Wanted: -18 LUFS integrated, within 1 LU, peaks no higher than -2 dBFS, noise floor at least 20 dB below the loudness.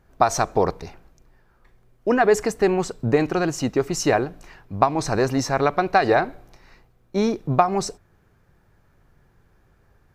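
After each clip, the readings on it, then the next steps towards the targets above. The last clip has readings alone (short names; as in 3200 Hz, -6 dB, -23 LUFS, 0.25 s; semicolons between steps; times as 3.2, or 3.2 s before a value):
loudness -22.0 LUFS; peak -1.5 dBFS; loudness target -18.0 LUFS
-> gain +4 dB; limiter -2 dBFS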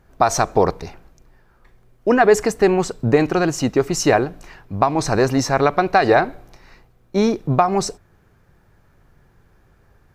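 loudness -18.0 LUFS; peak -2.0 dBFS; noise floor -56 dBFS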